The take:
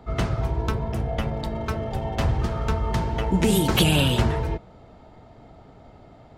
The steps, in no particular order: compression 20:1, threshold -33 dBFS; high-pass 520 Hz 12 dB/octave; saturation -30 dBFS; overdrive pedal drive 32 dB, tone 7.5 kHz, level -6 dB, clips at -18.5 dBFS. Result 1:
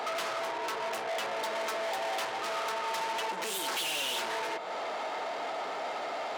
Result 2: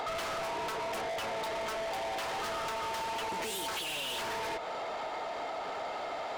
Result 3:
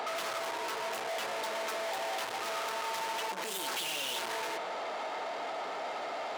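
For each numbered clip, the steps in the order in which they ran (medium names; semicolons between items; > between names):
compression > overdrive pedal > saturation > high-pass; high-pass > overdrive pedal > compression > saturation; overdrive pedal > saturation > compression > high-pass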